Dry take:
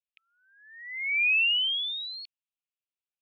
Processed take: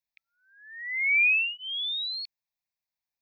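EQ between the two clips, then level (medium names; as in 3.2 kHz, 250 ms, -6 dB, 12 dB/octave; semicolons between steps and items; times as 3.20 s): static phaser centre 2 kHz, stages 8; +6.0 dB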